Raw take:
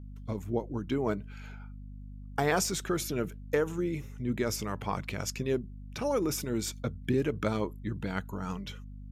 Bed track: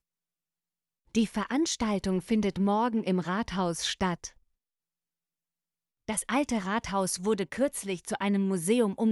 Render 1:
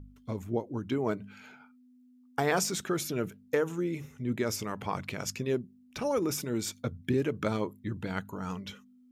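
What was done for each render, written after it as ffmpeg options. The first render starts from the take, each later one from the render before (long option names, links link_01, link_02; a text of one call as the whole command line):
ffmpeg -i in.wav -af "bandreject=frequency=50:width_type=h:width=4,bandreject=frequency=100:width_type=h:width=4,bandreject=frequency=150:width_type=h:width=4,bandreject=frequency=200:width_type=h:width=4" out.wav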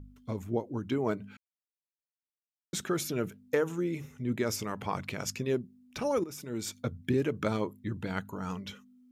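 ffmpeg -i in.wav -filter_complex "[0:a]asplit=4[link_01][link_02][link_03][link_04];[link_01]atrim=end=1.37,asetpts=PTS-STARTPTS,afade=type=out:start_time=1.366:duration=0.004:curve=hsin[link_05];[link_02]atrim=start=1.37:end=2.73,asetpts=PTS-STARTPTS,volume=0[link_06];[link_03]atrim=start=2.73:end=6.24,asetpts=PTS-STARTPTS,afade=type=in:duration=0.004:curve=hsin,afade=type=out:start_time=3.506:duration=0.004:curve=hsin:silence=0.16788[link_07];[link_04]atrim=start=6.24,asetpts=PTS-STARTPTS,afade=type=in:duration=0.58:silence=0.16788[link_08];[link_05][link_06][link_07][link_08]concat=n=4:v=0:a=1" out.wav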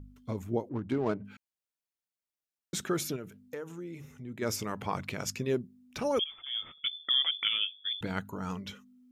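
ffmpeg -i in.wav -filter_complex "[0:a]asettb=1/sr,asplit=3[link_01][link_02][link_03];[link_01]atrim=end=0.694[link_04];[link_02]atrim=start=0.69:end=1.25,asetpts=PTS-STARTPTS,afade=type=in:duration=0.004:curve=qsin,afade=type=out:start_time=0.556:duration=0.004:curve=qsin,adynamicsmooth=sensitivity=8:basefreq=810[link_05];[link_03]atrim=start=1.246[link_06];[link_04][link_05]acrossfade=duration=0.004:curve1=hsin:curve2=qsin[link_07];[link_07][link_06]acrossfade=duration=0.004:curve1=qsin:curve2=hsin,asplit=3[link_08][link_09][link_10];[link_08]afade=type=out:start_time=3.15:duration=0.02[link_11];[link_09]acompressor=threshold=-46dB:ratio=2:attack=3.2:release=140:knee=1:detection=peak,afade=type=in:start_time=3.15:duration=0.02,afade=type=out:start_time=4.41:duration=0.02[link_12];[link_10]afade=type=in:start_time=4.41:duration=0.02[link_13];[link_11][link_12][link_13]amix=inputs=3:normalize=0,asettb=1/sr,asplit=3[link_14][link_15][link_16];[link_14]atrim=end=6.194[link_17];[link_15]atrim=start=6.19:end=8.01,asetpts=PTS-STARTPTS,afade=type=in:duration=0.004:curve=qsin,afade=type=out:start_time=1.816:duration=0.004:curve=qsin,lowpass=frequency=3100:width_type=q:width=0.5098,lowpass=frequency=3100:width_type=q:width=0.6013,lowpass=frequency=3100:width_type=q:width=0.9,lowpass=frequency=3100:width_type=q:width=2.563,afreqshift=-3600[link_18];[link_16]atrim=start=8.006[link_19];[link_17][link_18]acrossfade=duration=0.004:curve1=hsin:curve2=qsin[link_20];[link_20][link_19]acrossfade=duration=0.004:curve1=qsin:curve2=hsin" out.wav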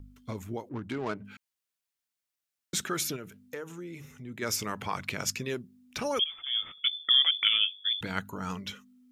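ffmpeg -i in.wav -filter_complex "[0:a]acrossover=split=870|1000[link_01][link_02][link_03];[link_01]alimiter=level_in=3dB:limit=-24dB:level=0:latency=1:release=192,volume=-3dB[link_04];[link_03]acontrast=29[link_05];[link_04][link_02][link_05]amix=inputs=3:normalize=0" out.wav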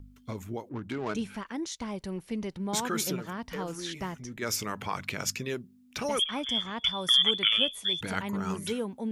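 ffmpeg -i in.wav -i bed.wav -filter_complex "[1:a]volume=-7.5dB[link_01];[0:a][link_01]amix=inputs=2:normalize=0" out.wav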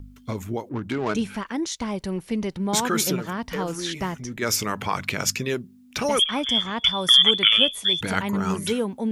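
ffmpeg -i in.wav -af "volume=7.5dB" out.wav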